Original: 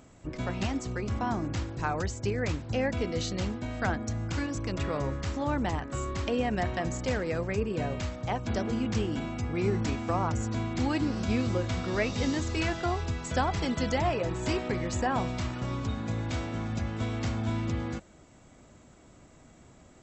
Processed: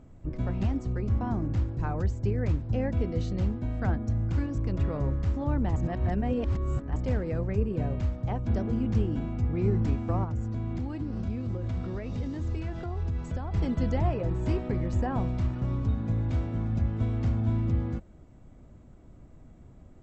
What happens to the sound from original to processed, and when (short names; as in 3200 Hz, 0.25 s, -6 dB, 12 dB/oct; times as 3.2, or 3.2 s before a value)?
5.76–6.96 reverse
10.24–13.54 compressor, threshold -31 dBFS
whole clip: tilt -3.5 dB/oct; gain -6 dB